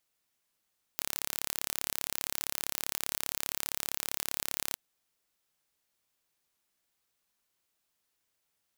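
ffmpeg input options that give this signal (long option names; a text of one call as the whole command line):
ffmpeg -f lavfi -i "aevalsrc='0.531*eq(mod(n,1253),0)':duration=3.76:sample_rate=44100" out.wav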